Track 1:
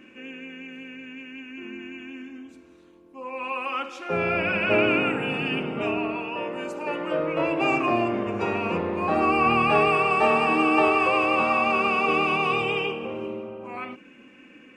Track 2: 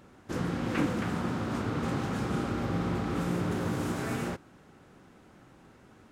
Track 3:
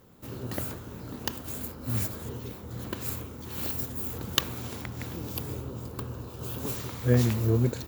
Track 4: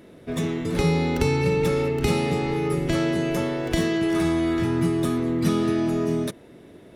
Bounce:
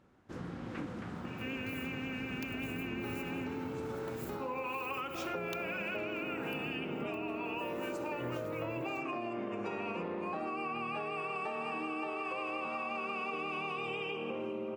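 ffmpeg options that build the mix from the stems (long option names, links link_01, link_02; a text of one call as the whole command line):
ffmpeg -i stem1.wav -i stem2.wav -i stem3.wav -i stem4.wav -filter_complex "[0:a]highpass=frequency=120:width=0.5412,highpass=frequency=120:width=1.3066,acompressor=threshold=-30dB:ratio=6,adelay=1250,volume=2dB[link_01];[1:a]lowpass=frequency=3900:poles=1,volume=-10.5dB[link_02];[2:a]adelay=1150,volume=-14.5dB[link_03];[3:a]afwtdn=0.0447,bandpass=frequency=2200:width_type=q:width=0.52:csg=0,adelay=2250,volume=-7.5dB[link_04];[link_01][link_02][link_03][link_04]amix=inputs=4:normalize=0,acompressor=threshold=-35dB:ratio=6" out.wav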